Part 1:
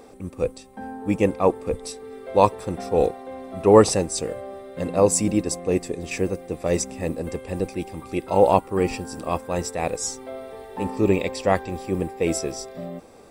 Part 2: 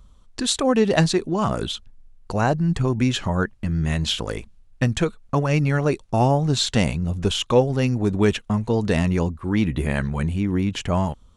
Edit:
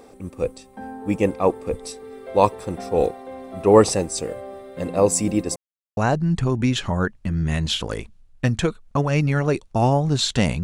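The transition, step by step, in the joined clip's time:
part 1
0:05.56–0:05.97: silence
0:05.97: continue with part 2 from 0:02.35

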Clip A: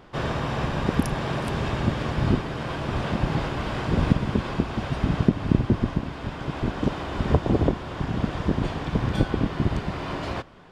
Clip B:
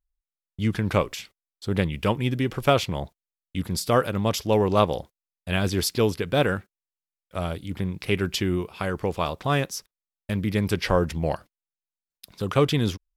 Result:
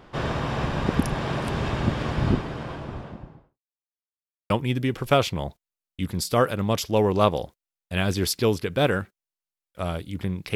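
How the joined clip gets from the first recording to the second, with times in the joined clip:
clip A
0:02.14–0:03.59: fade out and dull
0:03.59–0:04.50: silence
0:04.50: continue with clip B from 0:02.06

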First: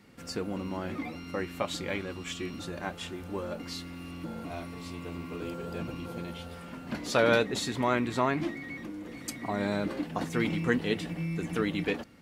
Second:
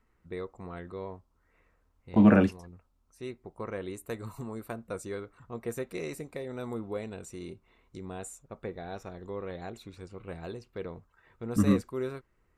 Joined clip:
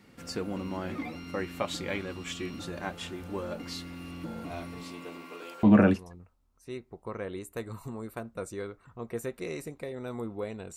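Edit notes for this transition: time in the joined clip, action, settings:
first
0:04.83–0:05.63: high-pass filter 170 Hz → 860 Hz
0:05.63: continue with second from 0:02.16

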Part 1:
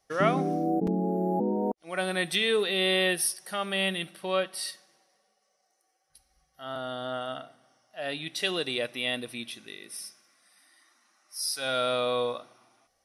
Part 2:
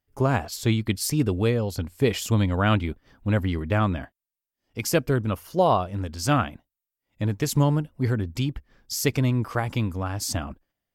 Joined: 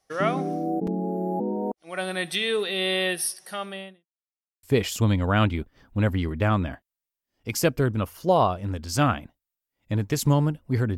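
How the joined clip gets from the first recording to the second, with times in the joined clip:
part 1
0:03.51–0:04.06: fade out and dull
0:04.06–0:04.63: silence
0:04.63: continue with part 2 from 0:01.93

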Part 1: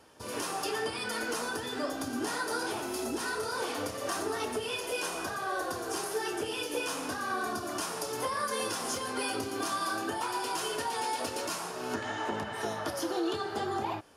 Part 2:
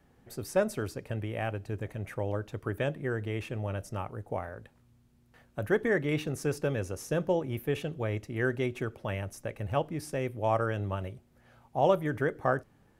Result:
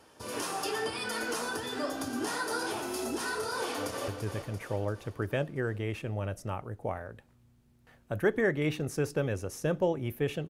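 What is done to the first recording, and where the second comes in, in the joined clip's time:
part 1
0:03.58–0:04.08: delay throw 340 ms, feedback 55%, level −8 dB
0:04.08: continue with part 2 from 0:01.55

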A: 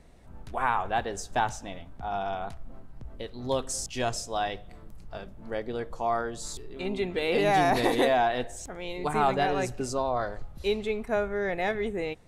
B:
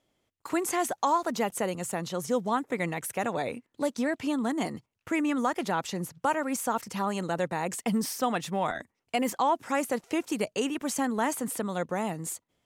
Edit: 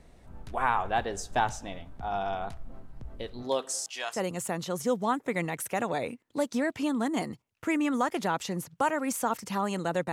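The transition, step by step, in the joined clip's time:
A
0:03.42–0:04.21: high-pass filter 220 Hz → 1,500 Hz
0:04.16: continue with B from 0:01.60, crossfade 0.10 s

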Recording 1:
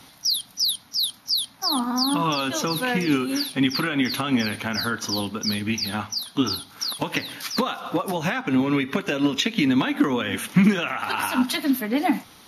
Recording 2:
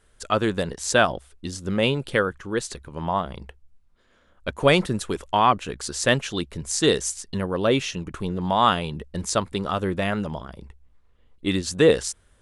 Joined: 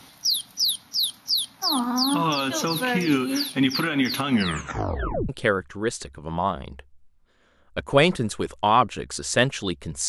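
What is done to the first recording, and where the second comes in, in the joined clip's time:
recording 1
0:04.28: tape stop 1.01 s
0:05.29: continue with recording 2 from 0:01.99

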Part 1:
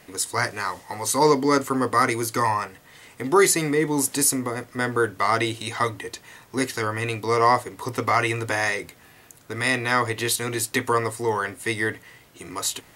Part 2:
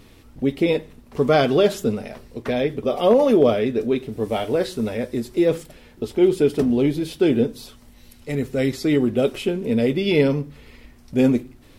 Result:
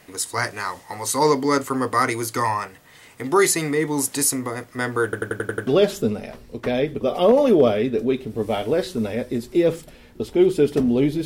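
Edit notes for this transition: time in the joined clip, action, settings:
part 1
0:05.04: stutter in place 0.09 s, 7 plays
0:05.67: continue with part 2 from 0:01.49

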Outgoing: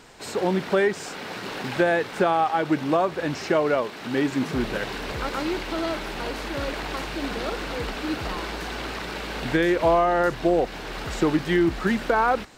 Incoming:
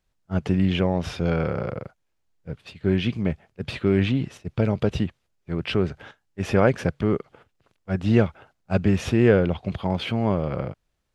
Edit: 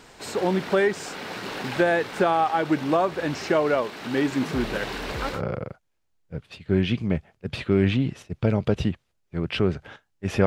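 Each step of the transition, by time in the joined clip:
outgoing
0:05.36: continue with incoming from 0:01.51, crossfade 0.12 s

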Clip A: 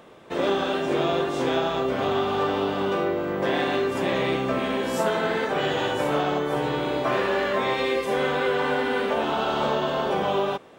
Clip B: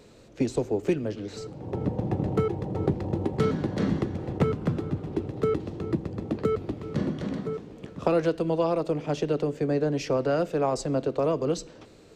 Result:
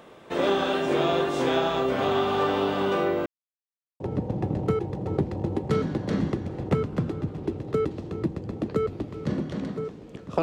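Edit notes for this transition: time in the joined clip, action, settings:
clip A
0:03.26–0:04.00: silence
0:04.00: continue with clip B from 0:01.69

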